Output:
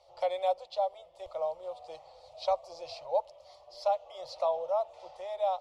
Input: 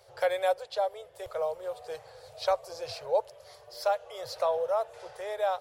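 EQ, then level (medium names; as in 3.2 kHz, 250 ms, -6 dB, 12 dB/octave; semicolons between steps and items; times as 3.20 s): low-pass 4.4 kHz 12 dB/octave; static phaser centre 430 Hz, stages 6; 0.0 dB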